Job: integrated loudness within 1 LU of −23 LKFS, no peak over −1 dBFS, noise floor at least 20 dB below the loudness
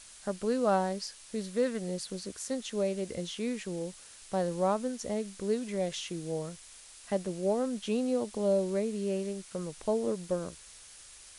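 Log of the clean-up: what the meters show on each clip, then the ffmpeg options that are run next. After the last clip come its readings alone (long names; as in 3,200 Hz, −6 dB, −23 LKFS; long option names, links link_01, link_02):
background noise floor −52 dBFS; target noise floor −53 dBFS; integrated loudness −33.0 LKFS; sample peak −16.5 dBFS; target loudness −23.0 LKFS
→ -af "afftdn=noise_reduction=6:noise_floor=-52"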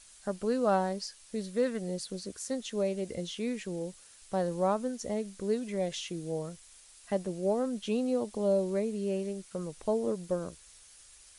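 background noise floor −56 dBFS; integrated loudness −33.0 LKFS; sample peak −17.0 dBFS; target loudness −23.0 LKFS
→ -af "volume=10dB"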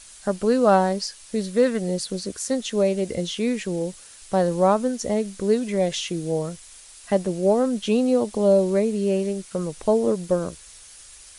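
integrated loudness −23.0 LKFS; sample peak −7.0 dBFS; background noise floor −46 dBFS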